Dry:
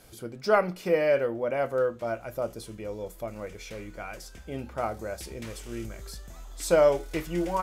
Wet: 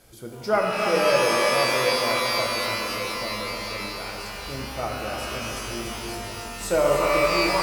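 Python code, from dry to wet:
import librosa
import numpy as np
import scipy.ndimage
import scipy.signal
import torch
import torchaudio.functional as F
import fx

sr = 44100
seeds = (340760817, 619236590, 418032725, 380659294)

y = x + 10.0 ** (-8.0 / 20.0) * np.pad(x, (int(294 * sr / 1000.0), 0))[:len(x)]
y = fx.rev_shimmer(y, sr, seeds[0], rt60_s=3.5, semitones=12, shimmer_db=-2, drr_db=0.0)
y = y * librosa.db_to_amplitude(-1.0)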